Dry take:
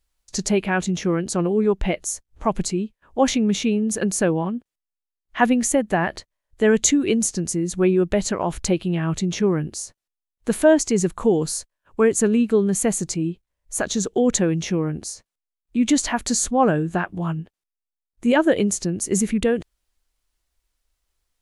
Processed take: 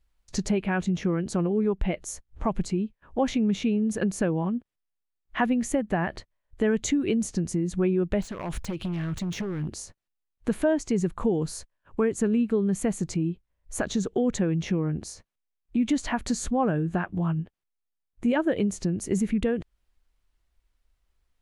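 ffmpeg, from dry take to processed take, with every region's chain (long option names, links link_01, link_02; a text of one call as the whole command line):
ffmpeg -i in.wav -filter_complex "[0:a]asettb=1/sr,asplit=3[link_01][link_02][link_03];[link_01]atrim=end=8.224[link_04];[link_02]atrim=start=8.22:end=9.69,asetpts=PTS-STARTPTS,afade=type=in:duration=0.004:curve=qsin,afade=type=out:start_time=1.466:duration=0.004:curve=qsin,highshelf=frequency=3000:gain=7,acompressor=threshold=-26dB:ratio=12:attack=3.2:release=140:knee=1:detection=peak,aeval=exprs='0.0501*(abs(mod(val(0)/0.0501+3,4)-2)-1)':channel_layout=same[link_05];[link_03]atrim=start=9.686[link_06];[link_04][link_05]acrossfade=duration=0.004:curve1=hsin:curve2=qsin[link_07];[link_07][link_06]acrossfade=duration=0.004:curve1=qsin:curve2=hsin,bass=frequency=250:gain=5,treble=frequency=4000:gain=-9,acompressor=threshold=-27dB:ratio=2" out.wav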